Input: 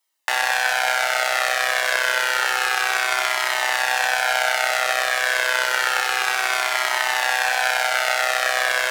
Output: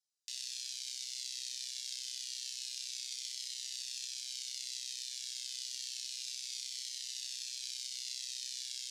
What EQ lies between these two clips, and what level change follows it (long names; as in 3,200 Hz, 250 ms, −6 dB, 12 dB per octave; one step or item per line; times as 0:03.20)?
inverse Chebyshev high-pass filter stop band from 1,400 Hz, stop band 60 dB
high-frequency loss of the air 87 metres
−4.0 dB